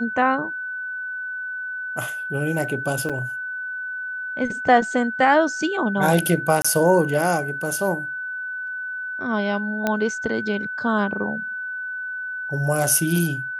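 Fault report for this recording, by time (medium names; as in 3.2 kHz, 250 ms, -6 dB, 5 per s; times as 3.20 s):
whine 1.5 kHz -27 dBFS
3.09–3.10 s: dropout 6.1 ms
6.62–6.64 s: dropout 25 ms
9.87 s: pop -8 dBFS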